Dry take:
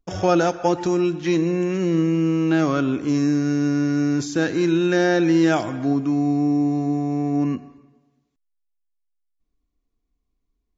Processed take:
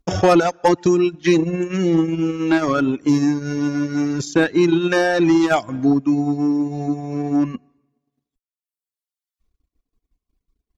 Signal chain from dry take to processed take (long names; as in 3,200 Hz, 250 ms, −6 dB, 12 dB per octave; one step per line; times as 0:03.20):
harmonic generator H 4 −22 dB, 5 −19 dB, 6 −25 dB, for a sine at −5.5 dBFS
reverb reduction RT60 1.8 s
transient designer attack +2 dB, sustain −10 dB
level +3.5 dB